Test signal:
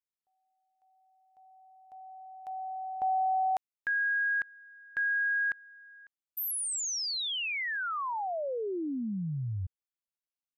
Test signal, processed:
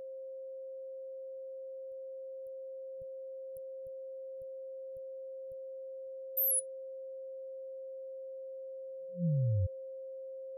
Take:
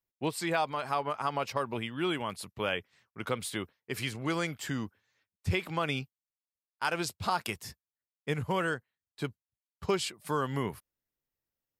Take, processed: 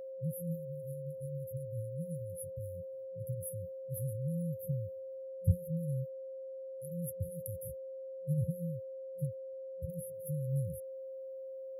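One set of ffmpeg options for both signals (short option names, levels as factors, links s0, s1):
-af "afftfilt=real='re*(1-between(b*sr/4096,180,9900))':imag='im*(1-between(b*sr/4096,180,9900))':win_size=4096:overlap=0.75,aeval=exprs='val(0)+0.00562*sin(2*PI*530*n/s)':c=same,volume=1.5"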